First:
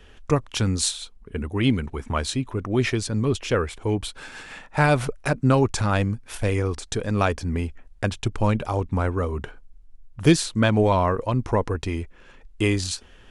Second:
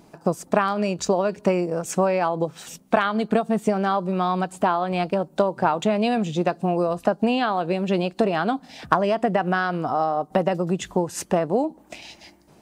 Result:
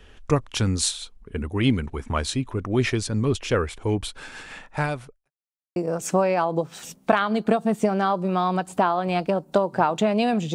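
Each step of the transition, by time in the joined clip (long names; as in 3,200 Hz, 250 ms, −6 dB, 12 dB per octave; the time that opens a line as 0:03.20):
first
0:04.63–0:05.31: fade out quadratic
0:05.31–0:05.76: silence
0:05.76: continue with second from 0:01.60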